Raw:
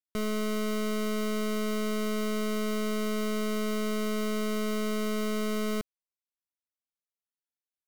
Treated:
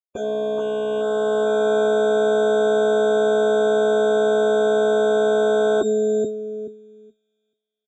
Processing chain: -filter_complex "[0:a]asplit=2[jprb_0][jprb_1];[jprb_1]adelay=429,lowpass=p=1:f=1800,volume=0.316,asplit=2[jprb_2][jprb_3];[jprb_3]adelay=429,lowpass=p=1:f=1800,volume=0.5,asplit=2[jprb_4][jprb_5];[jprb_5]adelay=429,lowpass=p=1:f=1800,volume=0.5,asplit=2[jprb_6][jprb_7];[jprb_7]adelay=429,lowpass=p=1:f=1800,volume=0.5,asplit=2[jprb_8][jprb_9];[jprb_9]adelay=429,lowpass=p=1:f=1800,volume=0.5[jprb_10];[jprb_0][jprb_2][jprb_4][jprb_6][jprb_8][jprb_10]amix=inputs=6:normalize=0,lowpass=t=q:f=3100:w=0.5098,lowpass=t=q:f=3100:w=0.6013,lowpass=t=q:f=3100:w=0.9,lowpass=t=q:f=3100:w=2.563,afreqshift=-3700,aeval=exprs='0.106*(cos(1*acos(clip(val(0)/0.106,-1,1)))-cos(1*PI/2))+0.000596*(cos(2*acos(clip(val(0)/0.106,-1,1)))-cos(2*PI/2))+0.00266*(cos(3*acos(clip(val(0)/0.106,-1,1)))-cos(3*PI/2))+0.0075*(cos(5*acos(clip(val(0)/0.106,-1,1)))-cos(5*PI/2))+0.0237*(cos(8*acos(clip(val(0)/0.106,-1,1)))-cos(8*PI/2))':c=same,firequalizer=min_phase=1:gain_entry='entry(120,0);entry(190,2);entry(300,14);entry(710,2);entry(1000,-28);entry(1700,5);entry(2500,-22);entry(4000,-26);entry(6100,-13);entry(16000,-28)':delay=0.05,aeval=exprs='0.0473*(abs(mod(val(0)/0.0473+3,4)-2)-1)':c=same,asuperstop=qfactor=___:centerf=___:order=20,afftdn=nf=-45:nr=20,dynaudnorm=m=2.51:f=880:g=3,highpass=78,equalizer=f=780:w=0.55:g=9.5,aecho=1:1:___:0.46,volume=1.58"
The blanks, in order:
2.8, 1900, 7.4